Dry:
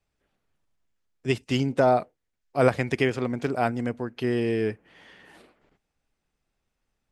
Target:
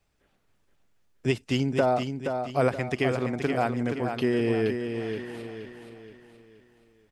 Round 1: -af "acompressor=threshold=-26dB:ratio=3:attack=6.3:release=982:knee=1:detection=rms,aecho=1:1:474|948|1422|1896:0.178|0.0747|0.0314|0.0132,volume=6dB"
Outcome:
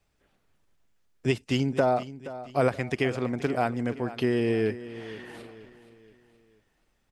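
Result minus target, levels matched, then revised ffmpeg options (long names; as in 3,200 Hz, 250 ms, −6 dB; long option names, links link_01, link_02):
echo-to-direct −8.5 dB
-af "acompressor=threshold=-26dB:ratio=3:attack=6.3:release=982:knee=1:detection=rms,aecho=1:1:474|948|1422|1896|2370:0.473|0.199|0.0835|0.0351|0.0147,volume=6dB"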